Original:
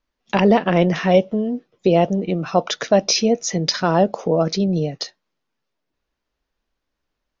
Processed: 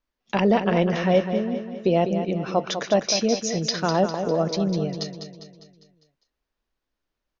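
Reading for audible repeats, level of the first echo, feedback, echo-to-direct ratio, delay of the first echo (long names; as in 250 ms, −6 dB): 5, −8.5 dB, 50%, −7.0 dB, 201 ms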